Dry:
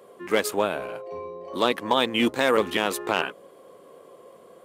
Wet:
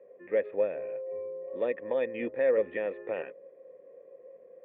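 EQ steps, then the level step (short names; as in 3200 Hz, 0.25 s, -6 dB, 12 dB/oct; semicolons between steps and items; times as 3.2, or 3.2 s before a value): vocal tract filter e; low shelf 400 Hz +5.5 dB; 0.0 dB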